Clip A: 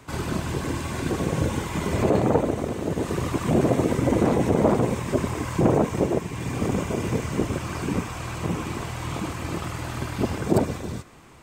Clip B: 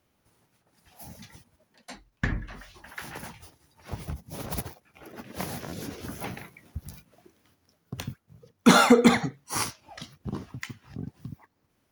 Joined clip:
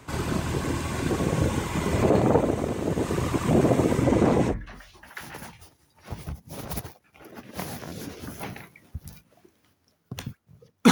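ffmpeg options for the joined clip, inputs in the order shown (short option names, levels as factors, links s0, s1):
-filter_complex "[0:a]asettb=1/sr,asplit=3[s0][s1][s2];[s0]atrim=end=4.044[s3];[s1]atrim=start=4.04:end=4.55,asetpts=PTS-STARTPTS,afade=t=in:d=0.004:c=qsin,afade=t=out:st=0.506:d=0.004:c=qsin,acrossover=split=8400[s4][s5];[s5]acompressor=threshold=0.00158:ratio=4:attack=1:release=60[s6];[s4][s6]amix=inputs=2:normalize=0[s7];[s2]atrim=start=4.546[s8];[s3][s7]acrossfade=d=0.004:c1=hsin:c2=qsin[s9];[s9][s8]acrossfade=d=0.004:c1=qsin:c2=hsin,apad=whole_dur=10.91,atrim=end=10.91,atrim=end=4.55,asetpts=PTS-STARTPTS[s10];[1:a]atrim=start=2.28:end=8.72,asetpts=PTS-STARTPTS[s11];[s10][s11]acrossfade=d=0.08:c1=tri:c2=tri"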